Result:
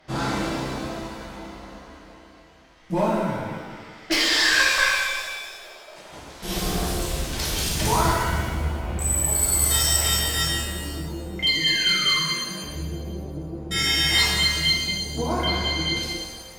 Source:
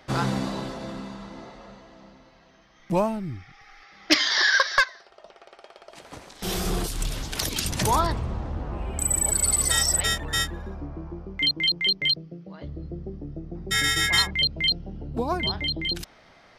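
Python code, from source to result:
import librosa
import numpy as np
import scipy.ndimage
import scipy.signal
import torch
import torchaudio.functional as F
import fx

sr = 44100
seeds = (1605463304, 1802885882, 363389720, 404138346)

y = fx.clip_asym(x, sr, top_db=-17.5, bottom_db=-11.0)
y = fx.spec_paint(y, sr, seeds[0], shape='fall', start_s=11.54, length_s=0.69, low_hz=1000.0, high_hz=2000.0, level_db=-35.0)
y = fx.rev_shimmer(y, sr, seeds[1], rt60_s=1.6, semitones=7, shimmer_db=-8, drr_db=-7.0)
y = y * 10.0 ** (-5.5 / 20.0)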